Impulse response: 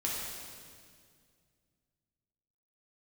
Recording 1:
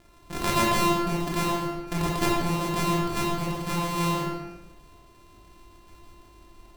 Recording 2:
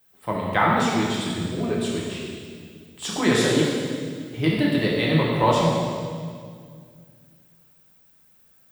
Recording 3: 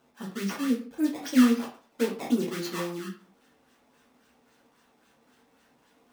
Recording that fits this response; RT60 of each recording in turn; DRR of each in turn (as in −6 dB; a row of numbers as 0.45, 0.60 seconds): 2; 1.2, 2.1, 0.45 seconds; −4.5, −5.0, −3.5 decibels